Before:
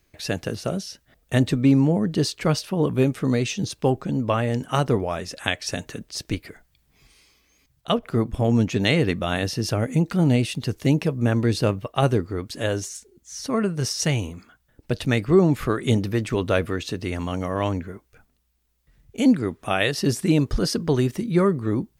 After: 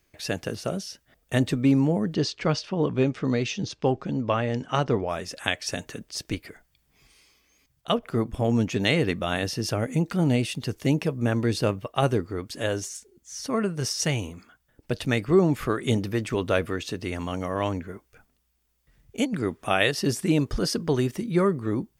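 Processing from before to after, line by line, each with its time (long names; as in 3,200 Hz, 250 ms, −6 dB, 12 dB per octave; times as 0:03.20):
0:02.14–0:05.09: low-pass filter 6,100 Hz 24 dB per octave
0:17.89–0:19.91: compressor whose output falls as the input rises −19 dBFS, ratio −0.5
whole clip: low-shelf EQ 210 Hz −4 dB; notch filter 4,000 Hz, Q 20; level −1.5 dB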